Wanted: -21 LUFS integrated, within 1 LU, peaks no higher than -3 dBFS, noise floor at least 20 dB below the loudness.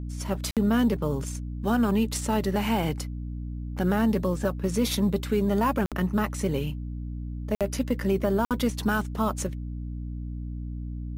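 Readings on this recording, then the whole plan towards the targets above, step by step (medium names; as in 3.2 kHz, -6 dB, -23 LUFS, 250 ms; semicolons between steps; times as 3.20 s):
dropouts 4; longest dropout 57 ms; hum 60 Hz; highest harmonic 300 Hz; hum level -31 dBFS; loudness -27.5 LUFS; peak level -12.5 dBFS; loudness target -21.0 LUFS
-> interpolate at 0.51/5.86/7.55/8.45 s, 57 ms; hum notches 60/120/180/240/300 Hz; trim +6.5 dB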